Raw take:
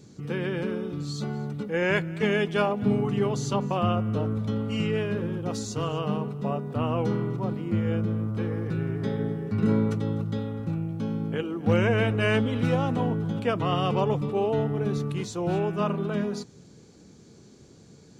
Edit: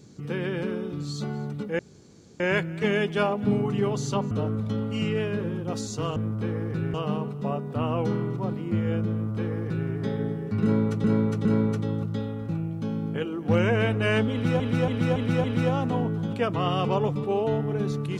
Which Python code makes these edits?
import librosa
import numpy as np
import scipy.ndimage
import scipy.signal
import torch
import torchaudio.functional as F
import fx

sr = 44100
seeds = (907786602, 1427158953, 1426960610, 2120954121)

y = fx.edit(x, sr, fx.insert_room_tone(at_s=1.79, length_s=0.61),
    fx.cut(start_s=3.7, length_s=0.39),
    fx.duplicate(start_s=8.12, length_s=0.78, to_s=5.94),
    fx.repeat(start_s=9.63, length_s=0.41, count=3),
    fx.repeat(start_s=12.5, length_s=0.28, count=5), tone=tone)